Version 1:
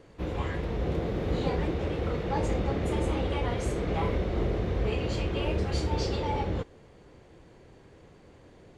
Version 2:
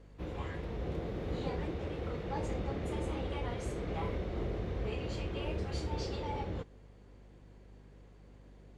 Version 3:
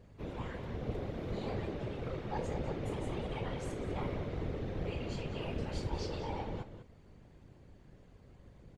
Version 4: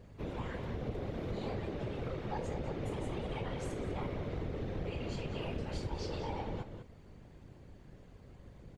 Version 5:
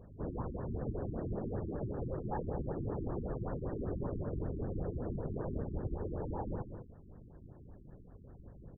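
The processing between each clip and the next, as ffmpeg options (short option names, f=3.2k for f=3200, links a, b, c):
-af "aeval=exprs='val(0)+0.00447*(sin(2*PI*50*n/s)+sin(2*PI*2*50*n/s)/2+sin(2*PI*3*50*n/s)/3+sin(2*PI*4*50*n/s)/4+sin(2*PI*5*50*n/s)/5)':c=same,volume=-8dB"
-filter_complex "[0:a]afftfilt=real='hypot(re,im)*cos(2*PI*random(0))':imag='hypot(re,im)*sin(2*PI*random(1))':win_size=512:overlap=0.75,asplit=2[a][b];[b]adelay=198.3,volume=-10dB,highshelf=f=4k:g=-4.46[c];[a][c]amix=inputs=2:normalize=0,volume=4.5dB"
-af "acompressor=threshold=-38dB:ratio=3,volume=3dB"
-af "afftfilt=real='re*lt(b*sr/1024,380*pow(1900/380,0.5+0.5*sin(2*PI*5.2*pts/sr)))':imag='im*lt(b*sr/1024,380*pow(1900/380,0.5+0.5*sin(2*PI*5.2*pts/sr)))':win_size=1024:overlap=0.75,volume=1dB"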